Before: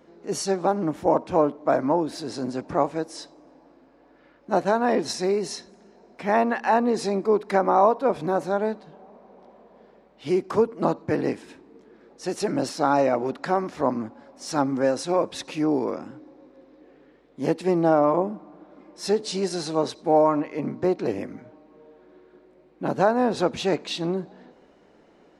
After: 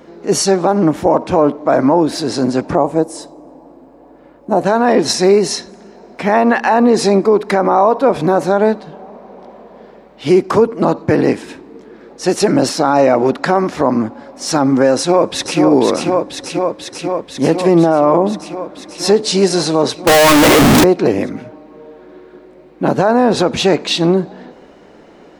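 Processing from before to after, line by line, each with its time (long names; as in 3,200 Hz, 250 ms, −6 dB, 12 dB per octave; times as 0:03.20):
0:02.75–0:04.64: flat-topped bell 2,800 Hz −10.5 dB 2.5 octaves
0:14.96–0:15.60: delay throw 490 ms, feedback 80%, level −5 dB
0:20.07–0:20.84: sign of each sample alone
whole clip: boost into a limiter +15 dB; level −1 dB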